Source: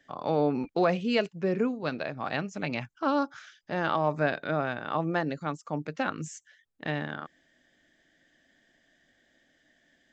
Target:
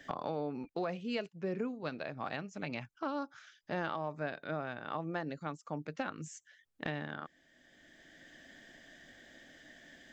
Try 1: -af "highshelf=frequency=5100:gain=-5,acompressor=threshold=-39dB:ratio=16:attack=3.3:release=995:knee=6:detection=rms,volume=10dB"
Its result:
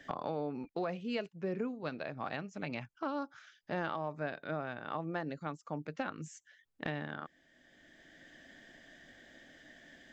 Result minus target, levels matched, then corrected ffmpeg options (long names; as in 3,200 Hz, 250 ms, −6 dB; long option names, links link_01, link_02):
8,000 Hz band −3.0 dB
-af "acompressor=threshold=-39dB:ratio=16:attack=3.3:release=995:knee=6:detection=rms,volume=10dB"